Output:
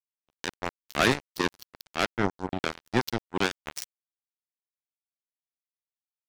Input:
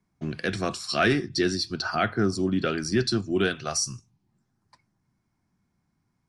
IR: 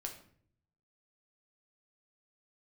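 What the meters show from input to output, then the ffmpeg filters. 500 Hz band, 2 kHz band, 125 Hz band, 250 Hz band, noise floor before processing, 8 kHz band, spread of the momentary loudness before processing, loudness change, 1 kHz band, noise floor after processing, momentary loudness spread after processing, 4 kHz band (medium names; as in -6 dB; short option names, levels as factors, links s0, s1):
-4.5 dB, -1.5 dB, -6.0 dB, -6.0 dB, -76 dBFS, -8.0 dB, 7 LU, -3.5 dB, -0.5 dB, under -85 dBFS, 14 LU, -4.0 dB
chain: -af "acrusher=bits=2:mix=0:aa=0.5"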